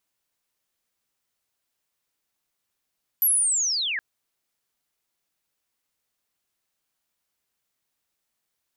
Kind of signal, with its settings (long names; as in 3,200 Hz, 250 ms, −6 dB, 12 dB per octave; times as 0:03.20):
glide linear 12,000 Hz → 1,600 Hz −16.5 dBFS → −25 dBFS 0.77 s